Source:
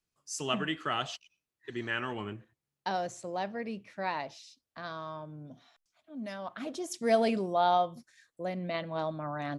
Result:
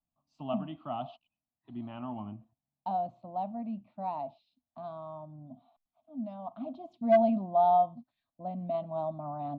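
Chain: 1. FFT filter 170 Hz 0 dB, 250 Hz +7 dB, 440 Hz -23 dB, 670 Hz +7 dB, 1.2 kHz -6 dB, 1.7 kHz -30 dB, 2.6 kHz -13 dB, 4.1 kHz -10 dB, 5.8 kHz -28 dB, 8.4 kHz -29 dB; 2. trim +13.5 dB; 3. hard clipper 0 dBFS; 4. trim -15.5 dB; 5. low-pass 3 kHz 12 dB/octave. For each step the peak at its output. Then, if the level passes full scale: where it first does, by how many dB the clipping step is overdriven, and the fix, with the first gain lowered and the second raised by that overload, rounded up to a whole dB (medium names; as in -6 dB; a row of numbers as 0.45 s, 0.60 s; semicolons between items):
-9.5 dBFS, +4.0 dBFS, 0.0 dBFS, -15.5 dBFS, -15.0 dBFS; step 2, 4.0 dB; step 2 +9.5 dB, step 4 -11.5 dB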